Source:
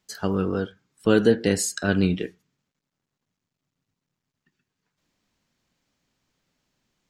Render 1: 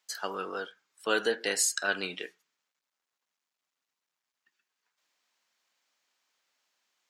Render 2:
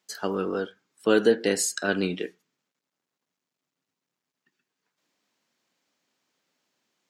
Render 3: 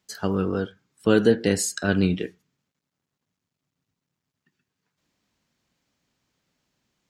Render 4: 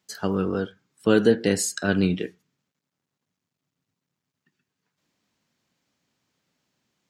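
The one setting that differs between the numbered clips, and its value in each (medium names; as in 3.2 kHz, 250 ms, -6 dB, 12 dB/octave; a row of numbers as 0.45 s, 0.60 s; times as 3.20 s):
high-pass, cutoff frequency: 790 Hz, 300 Hz, 41 Hz, 100 Hz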